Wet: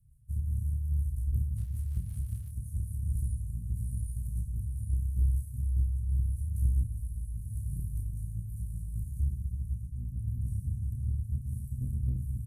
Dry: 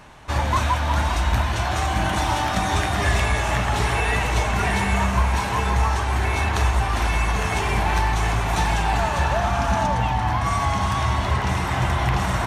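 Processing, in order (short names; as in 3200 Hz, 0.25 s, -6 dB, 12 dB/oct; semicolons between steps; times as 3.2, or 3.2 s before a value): Chebyshev band-stop 130–10000 Hz, order 4; 1.55–2.48 crackle 290/s -43 dBFS; rotary speaker horn 5.5 Hz, later 0.8 Hz, at 2.58; added harmonics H 2 -13 dB, 6 -32 dB, 7 -42 dB, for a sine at -12 dBFS; doubler 29 ms -5 dB; gain -7.5 dB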